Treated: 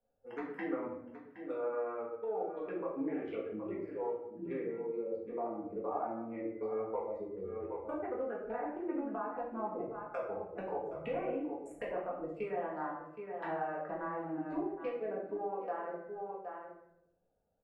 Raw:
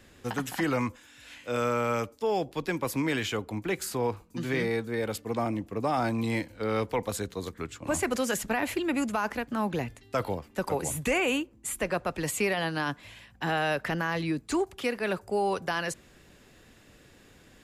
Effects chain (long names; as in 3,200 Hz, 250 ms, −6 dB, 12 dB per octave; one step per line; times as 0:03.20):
adaptive Wiener filter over 41 samples
noise reduction from a noise print of the clip's start 16 dB
phaser swept by the level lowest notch 330 Hz, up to 4,800 Hz, full sweep at −27.5 dBFS
hum removal 254.3 Hz, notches 9
treble cut that deepens with the level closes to 1,300 Hz, closed at −30 dBFS
three-way crossover with the lows and the highs turned down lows −21 dB, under 340 Hz, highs −17 dB, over 2,100 Hz
single-tap delay 768 ms −16 dB
downward compressor 5 to 1, threshold −43 dBFS, peak gain reduction 14 dB
rectangular room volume 190 cubic metres, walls mixed, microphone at 1.8 metres
level +1 dB